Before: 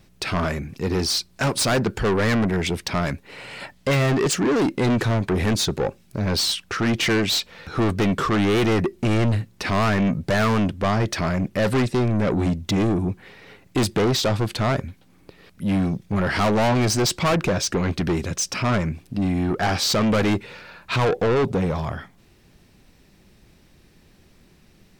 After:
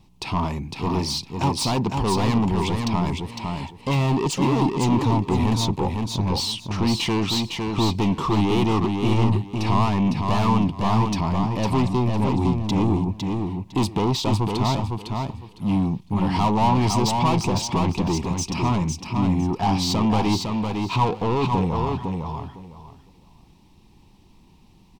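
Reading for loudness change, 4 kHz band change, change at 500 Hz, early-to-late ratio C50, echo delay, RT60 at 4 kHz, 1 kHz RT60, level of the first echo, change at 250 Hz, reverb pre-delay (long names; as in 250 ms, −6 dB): −0.5 dB, −2.0 dB, −4.0 dB, no reverb audible, 506 ms, no reverb audible, no reverb audible, −4.5 dB, +1.0 dB, no reverb audible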